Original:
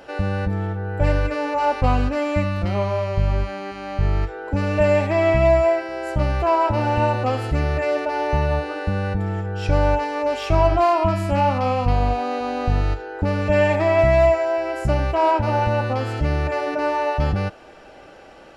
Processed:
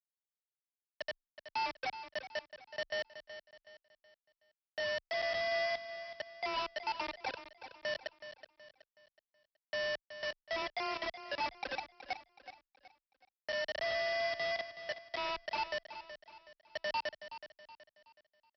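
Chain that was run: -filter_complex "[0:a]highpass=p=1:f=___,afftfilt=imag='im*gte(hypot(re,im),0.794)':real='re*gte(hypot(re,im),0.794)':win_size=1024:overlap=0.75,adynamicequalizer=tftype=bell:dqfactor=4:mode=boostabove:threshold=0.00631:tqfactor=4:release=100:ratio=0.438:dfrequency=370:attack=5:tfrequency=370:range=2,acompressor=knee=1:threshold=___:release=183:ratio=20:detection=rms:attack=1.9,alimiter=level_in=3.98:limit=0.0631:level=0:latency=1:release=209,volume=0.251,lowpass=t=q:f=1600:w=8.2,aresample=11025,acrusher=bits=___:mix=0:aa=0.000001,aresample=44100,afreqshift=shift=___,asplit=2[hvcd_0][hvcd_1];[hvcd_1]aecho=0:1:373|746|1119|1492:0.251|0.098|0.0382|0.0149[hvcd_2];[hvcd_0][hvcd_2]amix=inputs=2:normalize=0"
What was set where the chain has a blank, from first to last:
220, 0.0398, 5, 15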